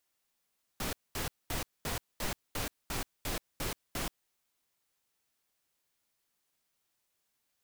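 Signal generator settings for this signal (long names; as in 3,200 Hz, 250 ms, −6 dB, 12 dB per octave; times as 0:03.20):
noise bursts pink, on 0.13 s, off 0.22 s, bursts 10, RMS −35 dBFS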